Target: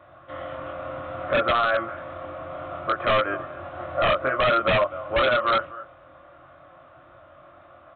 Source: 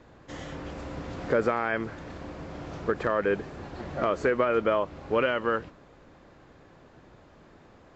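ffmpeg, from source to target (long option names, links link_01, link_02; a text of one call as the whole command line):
ffmpeg -i in.wav -filter_complex "[0:a]highpass=78,equalizer=frequency=210:width=2.3:gain=-15,asplit=2[link_01][link_02];[link_02]adelay=23,volume=-2.5dB[link_03];[link_01][link_03]amix=inputs=2:normalize=0,asplit=2[link_04][link_05];[link_05]aecho=0:1:248:0.106[link_06];[link_04][link_06]amix=inputs=2:normalize=0,acrossover=split=2700[link_07][link_08];[link_08]acompressor=threshold=-53dB:ratio=4:attack=1:release=60[link_09];[link_07][link_09]amix=inputs=2:normalize=0,superequalizer=7b=0.282:8b=2.82:10b=3.16,aresample=8000,aeval=exprs='0.188*(abs(mod(val(0)/0.188+3,4)-2)-1)':channel_layout=same,aresample=44100" out.wav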